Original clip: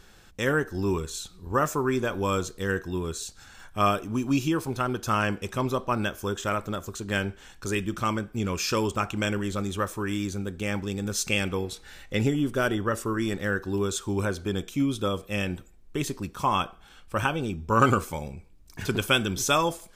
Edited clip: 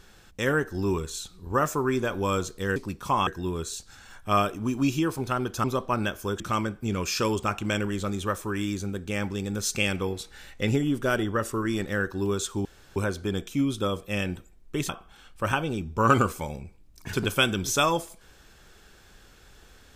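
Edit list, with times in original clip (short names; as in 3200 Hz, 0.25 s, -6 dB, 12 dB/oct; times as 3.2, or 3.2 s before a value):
5.13–5.63 cut
6.39–7.92 cut
14.17 insert room tone 0.31 s
16.1–16.61 move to 2.76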